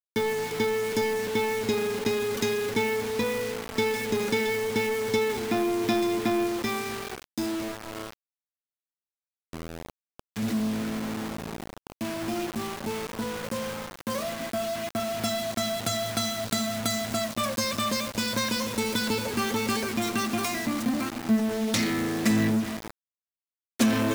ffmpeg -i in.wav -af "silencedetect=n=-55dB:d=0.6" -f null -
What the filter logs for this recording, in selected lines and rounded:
silence_start: 8.13
silence_end: 9.53 | silence_duration: 1.40
silence_start: 22.90
silence_end: 23.79 | silence_duration: 0.89